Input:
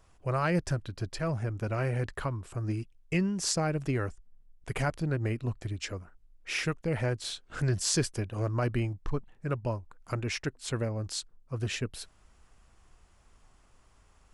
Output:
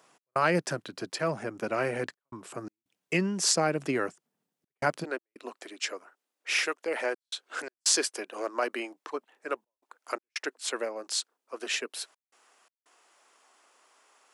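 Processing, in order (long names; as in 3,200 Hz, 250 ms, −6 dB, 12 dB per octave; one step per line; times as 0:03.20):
Bessel high-pass filter 280 Hz, order 8, from 0:05.03 520 Hz
gate pattern "x.xxxxxxxxxx.x" 84 BPM −60 dB
level +5.5 dB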